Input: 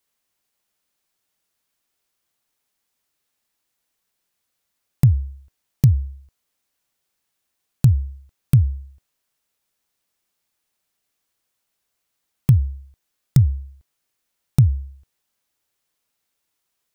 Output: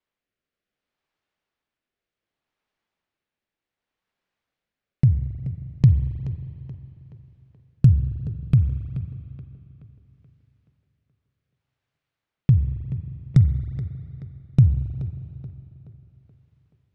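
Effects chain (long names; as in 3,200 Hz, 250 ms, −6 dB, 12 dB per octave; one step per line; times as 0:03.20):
rotating-speaker cabinet horn 0.65 Hz
low-pass that shuts in the quiet parts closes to 2,800 Hz, open at −13.5 dBFS
on a send: tape delay 427 ms, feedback 52%, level −11.5 dB, low-pass 3,800 Hz
on the sum: spring reverb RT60 3.1 s, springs 39/45 ms, chirp 30 ms, DRR 10 dB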